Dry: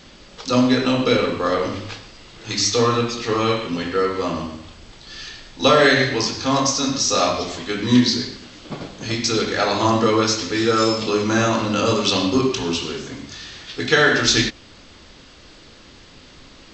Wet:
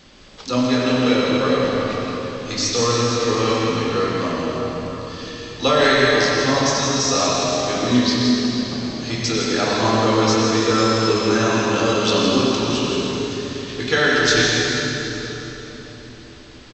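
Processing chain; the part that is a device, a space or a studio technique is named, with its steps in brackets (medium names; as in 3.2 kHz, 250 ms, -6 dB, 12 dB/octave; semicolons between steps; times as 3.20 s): cave (delay 162 ms -8 dB; reverberation RT60 4.0 s, pre-delay 91 ms, DRR -1 dB); trim -3 dB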